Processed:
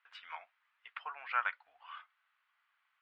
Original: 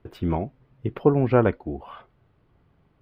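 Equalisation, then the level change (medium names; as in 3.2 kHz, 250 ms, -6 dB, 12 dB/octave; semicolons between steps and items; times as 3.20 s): inverse Chebyshev high-pass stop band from 380 Hz, stop band 60 dB; low-pass 3.4 kHz 12 dB/octave; 0.0 dB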